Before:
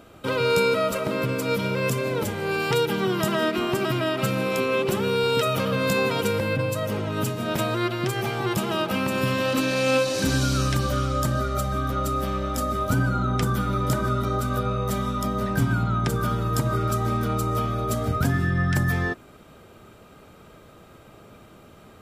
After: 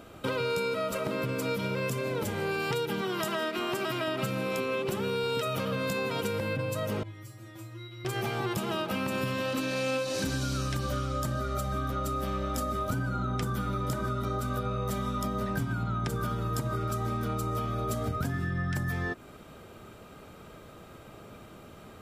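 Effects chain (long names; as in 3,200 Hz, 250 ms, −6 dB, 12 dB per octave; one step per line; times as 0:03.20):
0:03.01–0:04.08: low-shelf EQ 250 Hz −11.5 dB
downward compressor, threshold −28 dBFS, peak gain reduction 10.5 dB
0:07.03–0:08.05: tuned comb filter 110 Hz, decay 0.35 s, harmonics odd, mix 100%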